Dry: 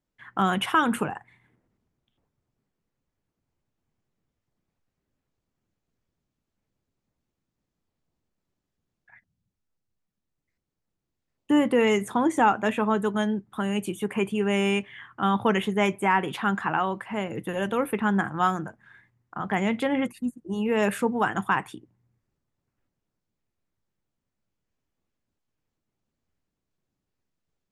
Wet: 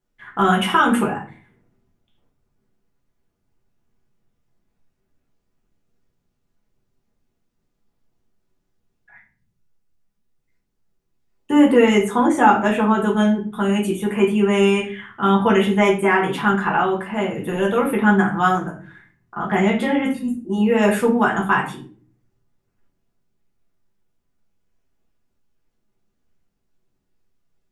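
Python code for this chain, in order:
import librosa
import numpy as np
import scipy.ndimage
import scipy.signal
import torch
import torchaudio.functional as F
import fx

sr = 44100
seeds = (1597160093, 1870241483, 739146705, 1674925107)

y = fx.room_shoebox(x, sr, seeds[0], volume_m3=31.0, walls='mixed', distance_m=0.75)
y = y * 10.0 ** (1.5 / 20.0)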